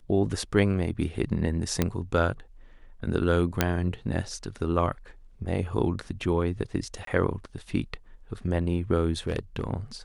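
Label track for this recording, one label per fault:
1.820000	1.820000	pop -9 dBFS
3.610000	3.610000	pop -5 dBFS
7.050000	7.070000	dropout 23 ms
9.270000	9.670000	clipped -22.5 dBFS

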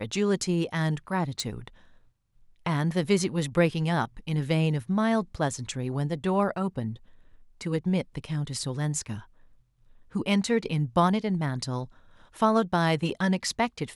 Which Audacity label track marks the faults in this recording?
1.400000	1.400000	pop -16 dBFS

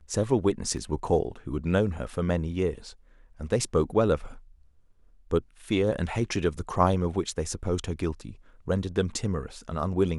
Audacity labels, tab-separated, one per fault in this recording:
0.770000	0.770000	dropout 2.9 ms

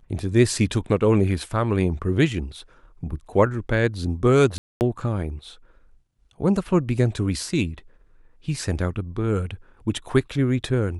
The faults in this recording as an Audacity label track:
4.580000	4.810000	dropout 229 ms

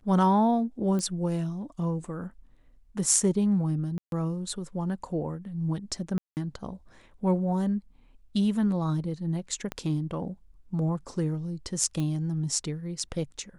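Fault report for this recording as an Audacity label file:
0.990000	0.990000	pop -20 dBFS
3.980000	4.120000	dropout 142 ms
6.180000	6.370000	dropout 189 ms
9.720000	9.720000	pop -18 dBFS
12.000000	12.000000	pop -20 dBFS

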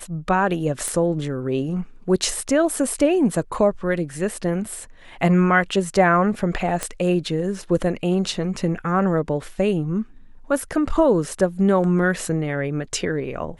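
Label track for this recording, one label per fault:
0.880000	0.880000	pop -12 dBFS
6.830000	6.830000	pop -9 dBFS

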